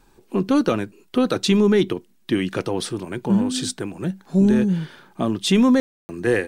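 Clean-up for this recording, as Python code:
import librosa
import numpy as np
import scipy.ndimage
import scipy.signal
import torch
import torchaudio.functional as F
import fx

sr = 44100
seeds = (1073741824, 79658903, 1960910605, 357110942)

y = fx.fix_ambience(x, sr, seeds[0], print_start_s=1.82, print_end_s=2.32, start_s=5.8, end_s=6.09)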